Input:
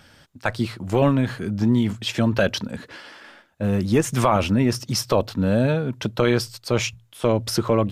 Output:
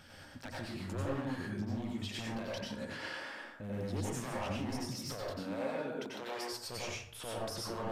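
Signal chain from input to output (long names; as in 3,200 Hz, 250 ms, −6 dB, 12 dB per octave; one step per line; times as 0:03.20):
wavefolder on the positive side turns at −14 dBFS
0:05.29–0:06.53: high-pass filter 340 Hz 12 dB per octave
downward compressor, threshold −32 dBFS, peak gain reduction 15 dB
brickwall limiter −29 dBFS, peak gain reduction 10.5 dB
dense smooth reverb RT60 0.62 s, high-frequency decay 0.55×, pre-delay 80 ms, DRR −4.5 dB
level −6 dB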